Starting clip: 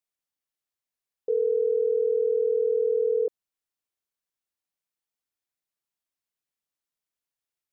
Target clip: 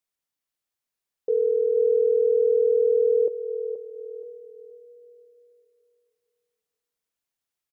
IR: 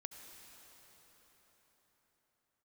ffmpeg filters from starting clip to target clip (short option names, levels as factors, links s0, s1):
-filter_complex "[0:a]aecho=1:1:477|954|1431:0.335|0.0971|0.0282,asplit=2[s0][s1];[1:a]atrim=start_sample=2205[s2];[s1][s2]afir=irnorm=-1:irlink=0,volume=0.562[s3];[s0][s3]amix=inputs=2:normalize=0"